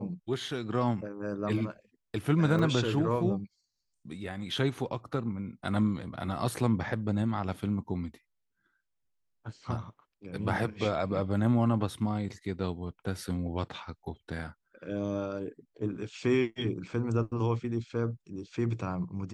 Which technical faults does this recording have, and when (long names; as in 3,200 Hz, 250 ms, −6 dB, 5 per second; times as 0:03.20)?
0:02.59: drop-out 3.7 ms